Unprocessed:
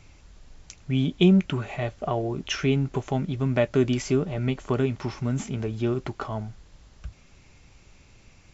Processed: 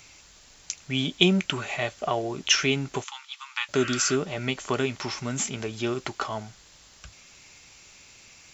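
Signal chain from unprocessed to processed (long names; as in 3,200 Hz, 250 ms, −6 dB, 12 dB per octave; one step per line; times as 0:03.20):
0:03.04–0:03.69: Chebyshev high-pass with heavy ripple 850 Hz, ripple 6 dB
0:03.80–0:04.13: healed spectral selection 1,100–3,200 Hz before
spectral tilt +3.5 dB per octave
level +3 dB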